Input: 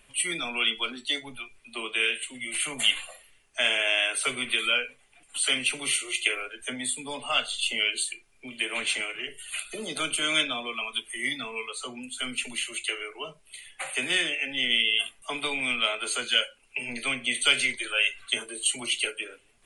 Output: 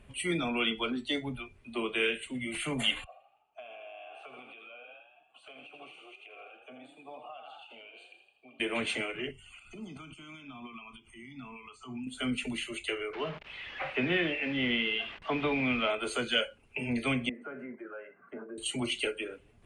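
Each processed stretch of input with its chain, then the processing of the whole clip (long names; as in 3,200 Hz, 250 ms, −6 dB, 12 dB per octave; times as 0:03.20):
0:03.04–0:08.60: formant filter a + echo with shifted repeats 81 ms, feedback 57%, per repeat +31 Hz, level −8.5 dB + downward compressor 10 to 1, threshold −42 dBFS
0:09.31–0:12.07: downward compressor 16 to 1, threshold −39 dBFS + phaser with its sweep stopped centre 2,600 Hz, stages 8
0:13.13–0:15.90: spike at every zero crossing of −18.5 dBFS + low-pass filter 2,900 Hz 24 dB per octave
0:17.29–0:18.58: elliptic band-pass filter 180–1,500 Hz + downward compressor 2 to 1, threshold −48 dBFS
whole clip: high-pass filter 62 Hz 12 dB per octave; spectral tilt −4 dB per octave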